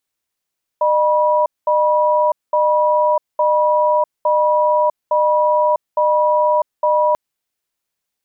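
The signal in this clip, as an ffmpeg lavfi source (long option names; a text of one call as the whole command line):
ffmpeg -f lavfi -i "aevalsrc='0.188*(sin(2*PI*608*t)+sin(2*PI*972*t))*clip(min(mod(t,0.86),0.65-mod(t,0.86))/0.005,0,1)':duration=6.34:sample_rate=44100" out.wav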